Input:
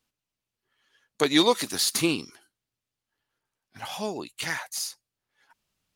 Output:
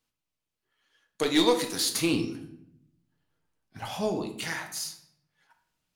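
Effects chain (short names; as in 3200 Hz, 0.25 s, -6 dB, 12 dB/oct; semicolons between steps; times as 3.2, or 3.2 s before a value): 2.13–4.24 low shelf 450 Hz +10.5 dB; overloaded stage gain 13.5 dB; shoebox room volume 180 m³, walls mixed, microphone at 0.54 m; gain -3.5 dB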